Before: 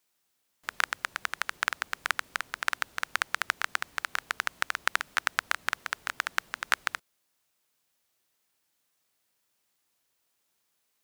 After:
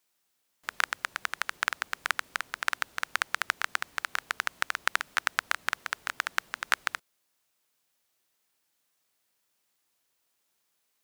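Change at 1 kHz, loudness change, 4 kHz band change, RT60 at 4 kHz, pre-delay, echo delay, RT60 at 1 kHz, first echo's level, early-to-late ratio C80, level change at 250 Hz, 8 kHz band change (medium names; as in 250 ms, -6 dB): 0.0 dB, 0.0 dB, 0.0 dB, no reverb, no reverb, no echo, no reverb, no echo, no reverb, -1.0 dB, 0.0 dB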